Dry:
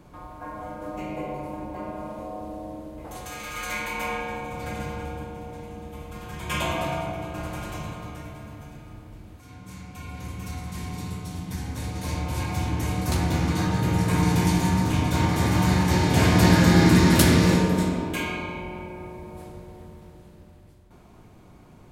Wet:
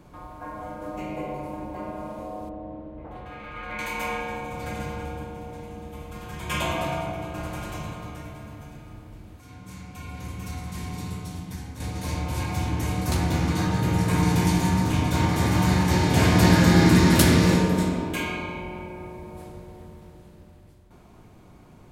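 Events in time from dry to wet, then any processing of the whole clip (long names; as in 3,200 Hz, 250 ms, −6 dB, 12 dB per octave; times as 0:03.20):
0:02.49–0:03.79: high-frequency loss of the air 490 metres
0:11.22–0:11.80: fade out, to −7.5 dB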